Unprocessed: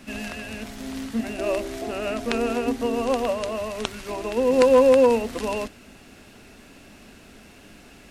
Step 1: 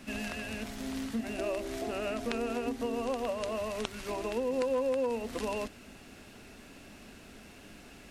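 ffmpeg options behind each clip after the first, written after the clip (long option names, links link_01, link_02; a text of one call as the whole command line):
ffmpeg -i in.wav -af "acompressor=threshold=-28dB:ratio=3,volume=-3.5dB" out.wav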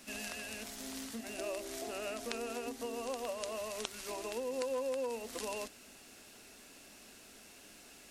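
ffmpeg -i in.wav -af "bass=frequency=250:gain=-9,treble=frequency=4000:gain=10,volume=-5.5dB" out.wav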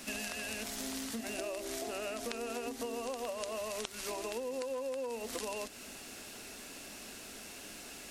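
ffmpeg -i in.wav -af "acompressor=threshold=-44dB:ratio=6,volume=8dB" out.wav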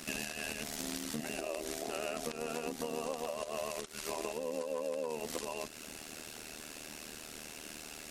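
ffmpeg -i in.wav -af "alimiter=level_in=1.5dB:limit=-24dB:level=0:latency=1:release=112,volume=-1.5dB,tremolo=f=77:d=0.857,volume=4.5dB" out.wav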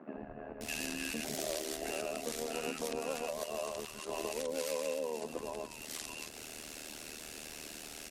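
ffmpeg -i in.wav -filter_complex "[0:a]acrossover=split=180|1200[link_01][link_02][link_03];[link_01]adelay=140[link_04];[link_03]adelay=610[link_05];[link_04][link_02][link_05]amix=inputs=3:normalize=0,volume=1dB" out.wav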